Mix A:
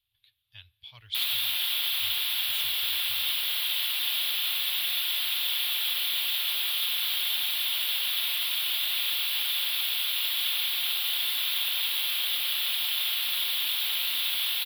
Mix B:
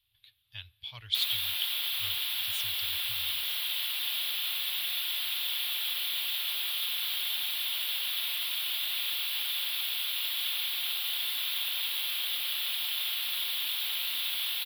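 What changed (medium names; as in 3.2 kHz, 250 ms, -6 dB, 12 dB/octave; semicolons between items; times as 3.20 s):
speech +5.0 dB; background -4.0 dB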